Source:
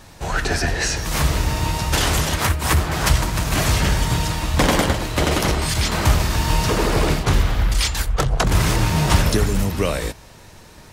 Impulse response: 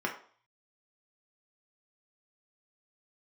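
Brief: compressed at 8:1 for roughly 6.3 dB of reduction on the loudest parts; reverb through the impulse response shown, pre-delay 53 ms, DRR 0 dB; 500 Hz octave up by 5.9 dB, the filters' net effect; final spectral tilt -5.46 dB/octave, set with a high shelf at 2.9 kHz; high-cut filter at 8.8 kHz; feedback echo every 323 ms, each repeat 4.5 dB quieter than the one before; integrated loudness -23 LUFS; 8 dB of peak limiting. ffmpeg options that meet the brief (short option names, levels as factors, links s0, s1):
-filter_complex "[0:a]lowpass=8800,equalizer=f=500:t=o:g=7.5,highshelf=f=2900:g=-5,acompressor=threshold=0.158:ratio=8,alimiter=limit=0.211:level=0:latency=1,aecho=1:1:323|646|969|1292|1615|1938|2261|2584|2907:0.596|0.357|0.214|0.129|0.0772|0.0463|0.0278|0.0167|0.01,asplit=2[s0][s1];[1:a]atrim=start_sample=2205,adelay=53[s2];[s1][s2]afir=irnorm=-1:irlink=0,volume=0.447[s3];[s0][s3]amix=inputs=2:normalize=0,volume=0.708"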